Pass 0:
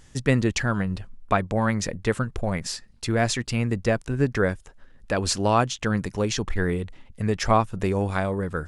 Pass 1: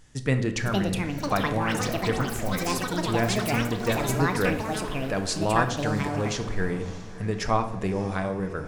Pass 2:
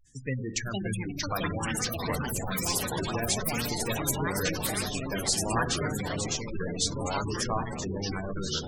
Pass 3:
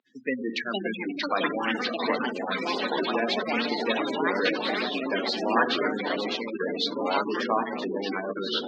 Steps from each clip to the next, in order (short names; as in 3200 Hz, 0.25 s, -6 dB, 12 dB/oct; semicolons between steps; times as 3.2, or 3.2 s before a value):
echoes that change speed 0.555 s, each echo +7 st, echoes 3; diffused feedback echo 0.629 s, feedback 41%, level -15 dB; shoebox room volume 300 m³, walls mixed, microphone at 0.48 m; gain -4.5 dB
pre-emphasis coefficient 0.8; echoes that change speed 0.523 s, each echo -3 st, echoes 3; spectral gate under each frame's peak -15 dB strong; gain +5.5 dB
Chebyshev band-pass 230–4100 Hz, order 4; gain +6.5 dB